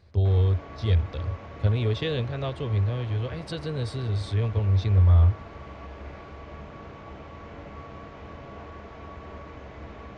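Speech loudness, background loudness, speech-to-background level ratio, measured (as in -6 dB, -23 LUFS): -25.5 LUFS, -42.5 LUFS, 17.0 dB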